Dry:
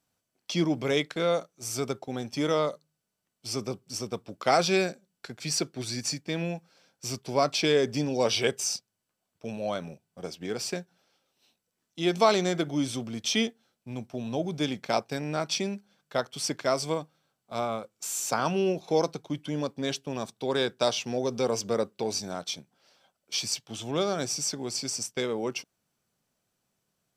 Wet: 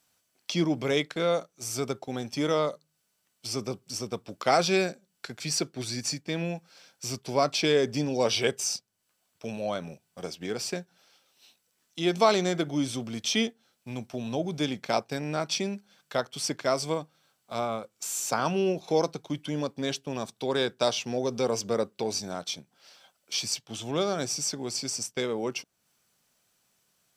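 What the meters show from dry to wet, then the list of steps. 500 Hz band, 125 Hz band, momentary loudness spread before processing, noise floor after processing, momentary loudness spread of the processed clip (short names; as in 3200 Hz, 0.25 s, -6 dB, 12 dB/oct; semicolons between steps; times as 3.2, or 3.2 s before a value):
0.0 dB, 0.0 dB, 12 LU, -75 dBFS, 12 LU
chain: mismatched tape noise reduction encoder only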